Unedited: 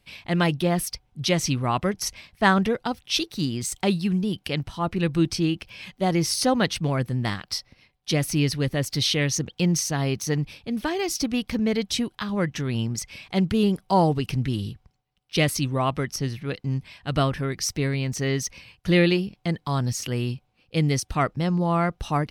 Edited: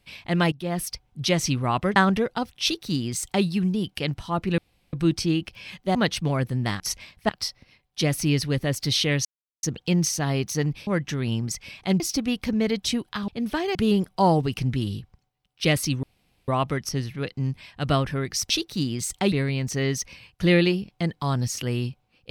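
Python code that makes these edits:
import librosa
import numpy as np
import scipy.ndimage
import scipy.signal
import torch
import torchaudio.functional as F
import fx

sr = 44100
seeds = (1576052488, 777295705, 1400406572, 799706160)

y = fx.edit(x, sr, fx.fade_in_from(start_s=0.52, length_s=0.56, curve='qsin', floor_db=-19.5),
    fx.move(start_s=1.96, length_s=0.49, to_s=7.39),
    fx.duplicate(start_s=3.12, length_s=0.82, to_s=17.77),
    fx.insert_room_tone(at_s=5.07, length_s=0.35),
    fx.cut(start_s=6.09, length_s=0.45),
    fx.insert_silence(at_s=9.35, length_s=0.38),
    fx.swap(start_s=10.59, length_s=0.47, other_s=12.34, other_length_s=1.13),
    fx.insert_room_tone(at_s=15.75, length_s=0.45), tone=tone)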